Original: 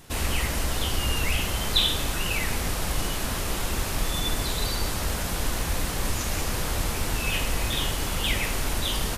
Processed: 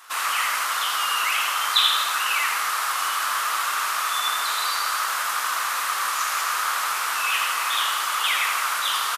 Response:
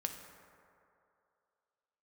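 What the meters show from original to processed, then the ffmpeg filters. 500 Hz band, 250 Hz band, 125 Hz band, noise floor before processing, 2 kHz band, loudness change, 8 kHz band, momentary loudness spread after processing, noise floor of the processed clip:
-8.5 dB, under -20 dB, under -35 dB, -30 dBFS, +8.0 dB, +5.0 dB, +3.5 dB, 3 LU, -26 dBFS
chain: -filter_complex "[0:a]highpass=f=1.2k:t=q:w=4.9,asplit=2[a][b];[b]asplit=6[c][d][e][f][g][h];[c]adelay=82,afreqshift=55,volume=-6dB[i];[d]adelay=164,afreqshift=110,volume=-12dB[j];[e]adelay=246,afreqshift=165,volume=-18dB[k];[f]adelay=328,afreqshift=220,volume=-24.1dB[l];[g]adelay=410,afreqshift=275,volume=-30.1dB[m];[h]adelay=492,afreqshift=330,volume=-36.1dB[n];[i][j][k][l][m][n]amix=inputs=6:normalize=0[o];[a][o]amix=inputs=2:normalize=0,volume=2dB"

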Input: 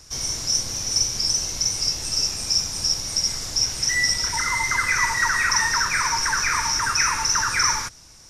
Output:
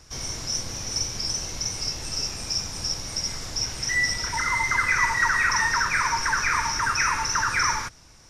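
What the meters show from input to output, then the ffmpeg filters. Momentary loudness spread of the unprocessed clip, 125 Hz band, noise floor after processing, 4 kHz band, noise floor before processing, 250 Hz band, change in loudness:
4 LU, 0.0 dB, -50 dBFS, -6.0 dB, -47 dBFS, 0.0 dB, -3.5 dB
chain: -af "bass=f=250:g=0,treble=f=4k:g=-8"

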